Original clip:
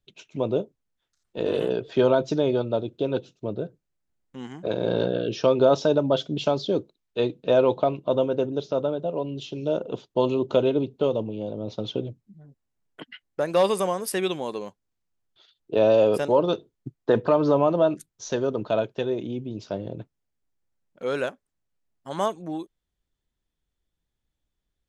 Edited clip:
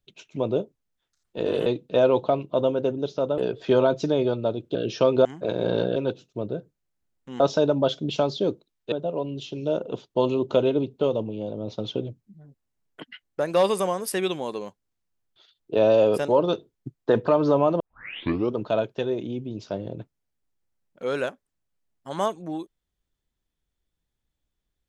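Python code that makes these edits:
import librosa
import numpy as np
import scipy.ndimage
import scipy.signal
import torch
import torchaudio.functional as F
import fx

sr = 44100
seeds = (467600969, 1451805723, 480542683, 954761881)

y = fx.edit(x, sr, fx.swap(start_s=3.03, length_s=1.44, other_s=5.18, other_length_s=0.5),
    fx.move(start_s=7.2, length_s=1.72, to_s=1.66),
    fx.tape_start(start_s=17.8, length_s=0.76), tone=tone)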